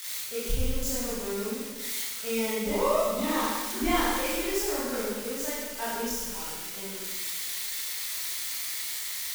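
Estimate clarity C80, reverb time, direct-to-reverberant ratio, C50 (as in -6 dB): 1.0 dB, 1.4 s, -9.0 dB, -2.0 dB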